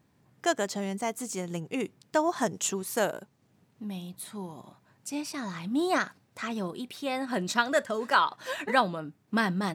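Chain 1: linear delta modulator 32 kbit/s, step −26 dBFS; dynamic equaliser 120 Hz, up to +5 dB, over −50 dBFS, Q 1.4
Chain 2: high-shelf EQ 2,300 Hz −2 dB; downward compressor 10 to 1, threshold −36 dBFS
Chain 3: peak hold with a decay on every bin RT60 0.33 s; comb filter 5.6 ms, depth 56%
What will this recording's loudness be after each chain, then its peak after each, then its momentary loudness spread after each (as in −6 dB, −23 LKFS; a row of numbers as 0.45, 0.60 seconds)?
−28.5, −41.0, −28.0 LKFS; −9.5, −23.5, −7.0 dBFS; 5, 7, 13 LU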